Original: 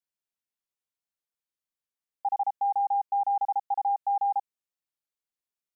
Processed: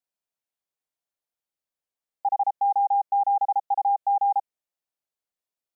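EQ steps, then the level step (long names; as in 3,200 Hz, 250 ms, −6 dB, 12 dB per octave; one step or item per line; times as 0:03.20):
parametric band 650 Hz +7 dB 1 octave
−1.0 dB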